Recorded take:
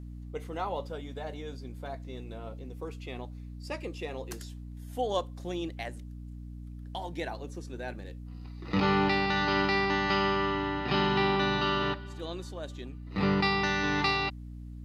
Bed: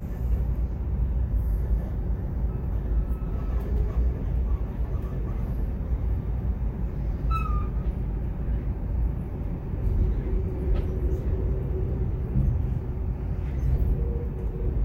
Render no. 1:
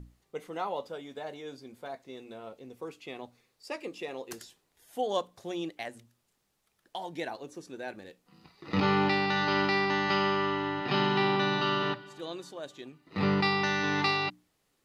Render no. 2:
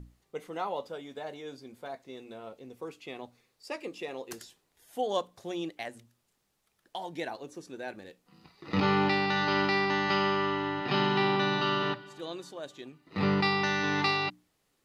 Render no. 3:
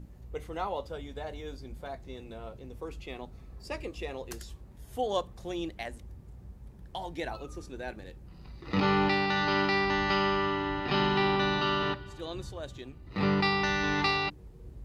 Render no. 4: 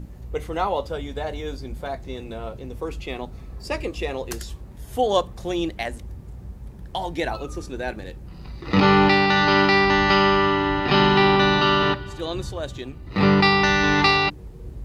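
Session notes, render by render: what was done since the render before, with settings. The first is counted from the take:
mains-hum notches 60/120/180/240/300 Hz
no processing that can be heard
mix in bed −20 dB
level +10 dB

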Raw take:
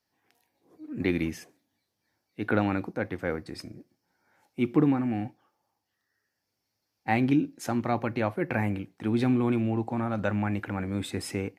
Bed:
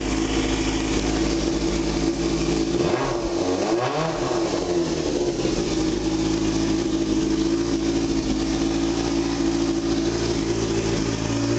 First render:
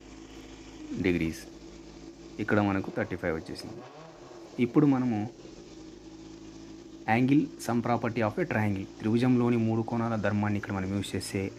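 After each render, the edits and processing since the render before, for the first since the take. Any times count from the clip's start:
mix in bed −24 dB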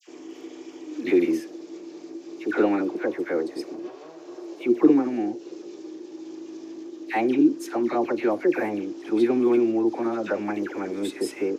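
high-pass with resonance 350 Hz, resonance Q 3.6
all-pass dispersion lows, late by 77 ms, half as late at 1,300 Hz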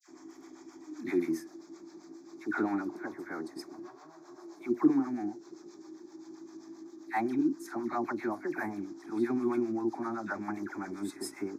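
phaser with its sweep stopped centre 1,200 Hz, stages 4
two-band tremolo in antiphase 7.6 Hz, depth 70%, crossover 510 Hz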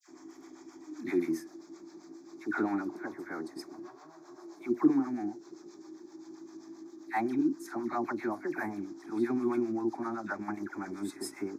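0:09.96–0:10.86: transient designer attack 0 dB, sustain −5 dB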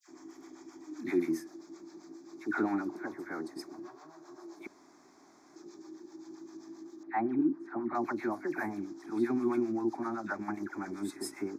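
0:04.67–0:05.56: fill with room tone
0:07.03–0:07.95: low-pass filter 1,700 Hz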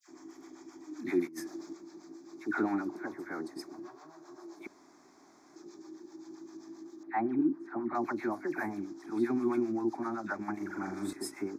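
0:01.27–0:01.73: compressor whose output falls as the input rises −42 dBFS
0:10.56–0:11.13: flutter between parallel walls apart 7.1 metres, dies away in 0.53 s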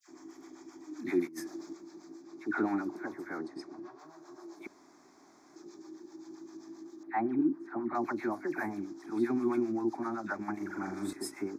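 0:02.22–0:02.64: high-shelf EQ 6,500 Hz −7.5 dB
0:03.38–0:03.99: high-frequency loss of the air 85 metres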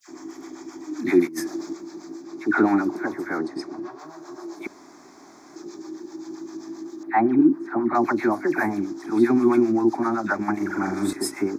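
level +12 dB

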